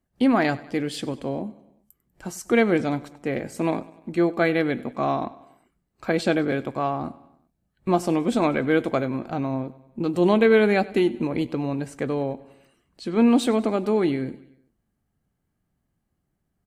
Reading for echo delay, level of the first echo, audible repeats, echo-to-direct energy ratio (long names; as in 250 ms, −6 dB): 97 ms, −20.0 dB, 3, −18.5 dB